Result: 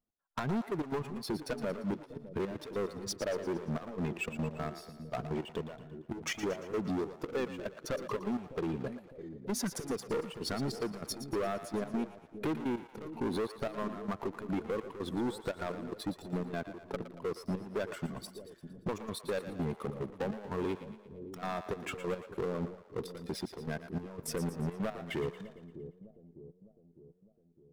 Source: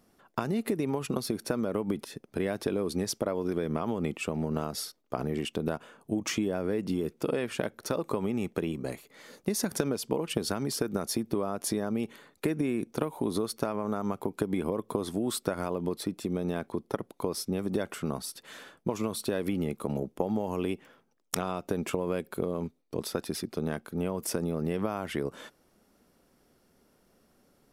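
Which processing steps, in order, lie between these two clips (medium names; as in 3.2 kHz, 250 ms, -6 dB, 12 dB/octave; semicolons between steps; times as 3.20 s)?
expander on every frequency bin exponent 1.5; low-pass 2.8 kHz 6 dB/octave; waveshaping leveller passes 2; saturation -29.5 dBFS, distortion -8 dB; trance gate "x..xxx.x." 147 bpm -12 dB; two-band feedback delay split 510 Hz, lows 606 ms, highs 115 ms, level -11 dB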